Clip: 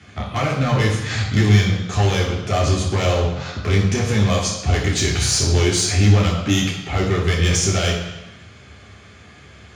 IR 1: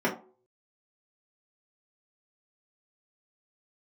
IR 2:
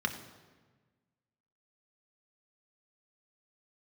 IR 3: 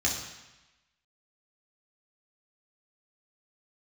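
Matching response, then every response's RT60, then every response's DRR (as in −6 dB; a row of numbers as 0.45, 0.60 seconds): 3; non-exponential decay, 1.4 s, 1.0 s; −6.5, 4.0, −3.0 decibels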